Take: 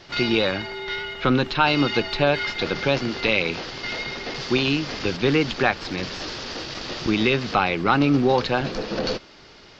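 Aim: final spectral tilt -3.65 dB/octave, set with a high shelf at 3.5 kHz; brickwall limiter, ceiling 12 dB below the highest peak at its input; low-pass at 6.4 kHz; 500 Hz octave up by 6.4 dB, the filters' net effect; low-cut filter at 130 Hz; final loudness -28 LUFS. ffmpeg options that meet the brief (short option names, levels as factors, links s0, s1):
-af "highpass=130,lowpass=6400,equalizer=f=500:t=o:g=8,highshelf=f=3500:g=-5.5,volume=0.708,alimiter=limit=0.141:level=0:latency=1"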